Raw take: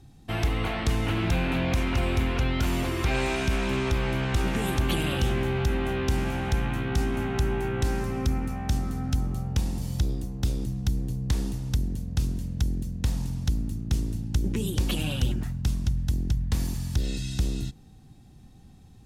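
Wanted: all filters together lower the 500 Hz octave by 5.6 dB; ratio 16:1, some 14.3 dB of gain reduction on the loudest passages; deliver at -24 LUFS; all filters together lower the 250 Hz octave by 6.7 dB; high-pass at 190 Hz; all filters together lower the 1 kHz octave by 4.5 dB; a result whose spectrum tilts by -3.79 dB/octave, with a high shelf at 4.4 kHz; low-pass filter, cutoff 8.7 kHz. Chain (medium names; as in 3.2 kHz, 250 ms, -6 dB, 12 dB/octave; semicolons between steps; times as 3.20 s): high-pass 190 Hz; low-pass 8.7 kHz; peaking EQ 250 Hz -5 dB; peaking EQ 500 Hz -4.5 dB; peaking EQ 1 kHz -4.5 dB; treble shelf 4.4 kHz +6 dB; compression 16:1, threshold -43 dBFS; trim +22.5 dB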